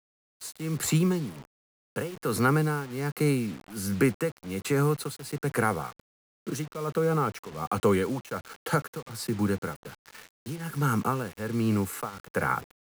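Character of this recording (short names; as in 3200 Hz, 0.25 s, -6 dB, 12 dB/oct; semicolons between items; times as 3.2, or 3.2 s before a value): tremolo triangle 1.3 Hz, depth 90%; a quantiser's noise floor 8-bit, dither none; IMA ADPCM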